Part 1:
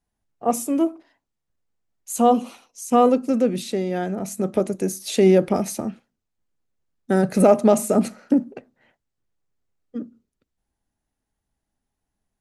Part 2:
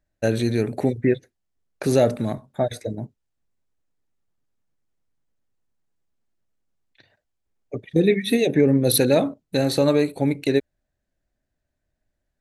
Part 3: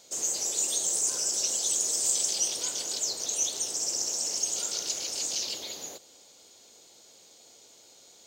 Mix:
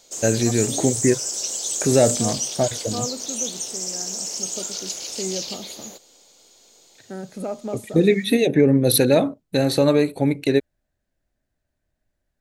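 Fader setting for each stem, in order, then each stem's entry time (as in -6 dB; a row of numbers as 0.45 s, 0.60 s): -15.0 dB, +1.5 dB, +1.5 dB; 0.00 s, 0.00 s, 0.00 s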